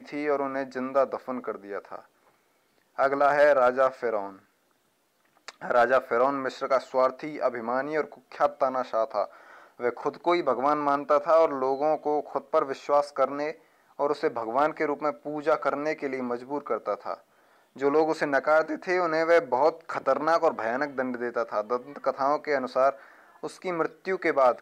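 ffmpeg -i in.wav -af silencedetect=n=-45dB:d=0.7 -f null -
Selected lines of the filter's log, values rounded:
silence_start: 2.05
silence_end: 2.99 | silence_duration: 0.94
silence_start: 4.39
silence_end: 5.48 | silence_duration: 1.09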